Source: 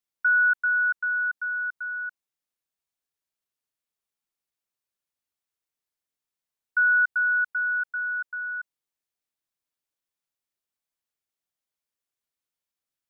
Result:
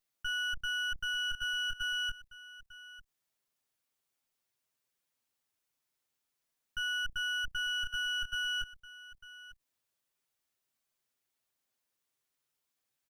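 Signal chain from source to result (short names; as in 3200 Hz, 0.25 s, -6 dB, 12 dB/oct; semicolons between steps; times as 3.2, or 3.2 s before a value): minimum comb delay 7.7 ms; in parallel at +2 dB: limiter -27 dBFS, peak gain reduction 10.5 dB; on the sum: echo 0.897 s -16 dB; level quantiser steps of 17 dB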